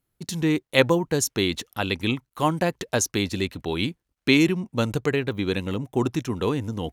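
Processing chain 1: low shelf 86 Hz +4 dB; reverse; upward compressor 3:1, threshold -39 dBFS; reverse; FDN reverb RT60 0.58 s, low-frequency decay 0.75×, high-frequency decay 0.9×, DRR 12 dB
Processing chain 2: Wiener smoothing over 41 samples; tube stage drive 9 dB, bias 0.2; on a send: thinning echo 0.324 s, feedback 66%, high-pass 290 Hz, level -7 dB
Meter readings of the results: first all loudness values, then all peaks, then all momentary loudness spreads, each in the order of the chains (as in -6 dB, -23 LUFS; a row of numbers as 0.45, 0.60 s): -24.0, -25.5 LUFS; -4.0, -8.5 dBFS; 7, 7 LU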